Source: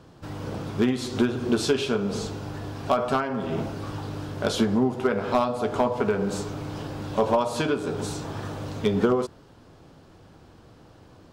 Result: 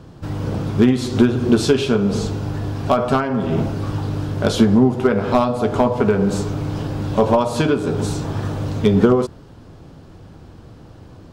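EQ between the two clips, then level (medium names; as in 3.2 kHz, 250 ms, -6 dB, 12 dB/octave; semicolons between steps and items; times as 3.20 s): bass shelf 270 Hz +8.5 dB; +4.5 dB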